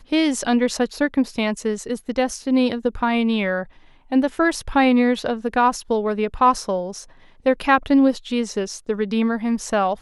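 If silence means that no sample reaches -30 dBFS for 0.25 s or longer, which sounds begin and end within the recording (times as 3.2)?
4.12–7.03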